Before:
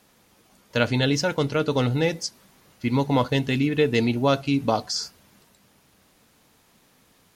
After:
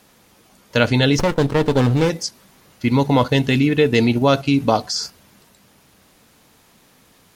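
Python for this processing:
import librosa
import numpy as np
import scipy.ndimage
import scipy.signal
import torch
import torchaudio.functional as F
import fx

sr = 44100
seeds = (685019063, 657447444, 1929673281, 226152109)

p1 = fx.level_steps(x, sr, step_db=13)
p2 = x + (p1 * librosa.db_to_amplitude(0.5))
p3 = fx.running_max(p2, sr, window=17, at=(1.18, 2.09), fade=0.02)
y = p3 * librosa.db_to_amplitude(2.0)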